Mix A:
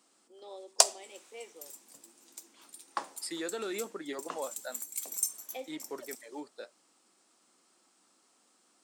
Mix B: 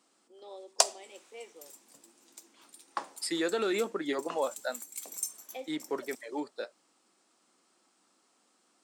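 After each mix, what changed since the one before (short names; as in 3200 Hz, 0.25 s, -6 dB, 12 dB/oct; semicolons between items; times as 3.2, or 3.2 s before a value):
second voice +7.0 dB; master: add high shelf 6900 Hz -6 dB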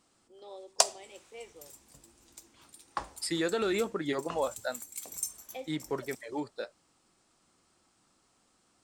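master: remove HPF 220 Hz 24 dB/oct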